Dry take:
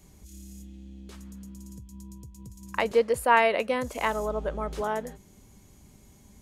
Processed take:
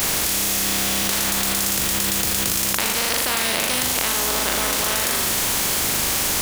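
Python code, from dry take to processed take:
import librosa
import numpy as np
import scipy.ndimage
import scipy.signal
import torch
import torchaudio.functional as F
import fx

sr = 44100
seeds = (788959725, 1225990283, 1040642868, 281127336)

y = fx.spec_flatten(x, sr, power=0.19)
y = fx.room_flutter(y, sr, wall_m=6.9, rt60_s=0.4)
y = fx.env_flatten(y, sr, amount_pct=100)
y = y * librosa.db_to_amplitude(-4.0)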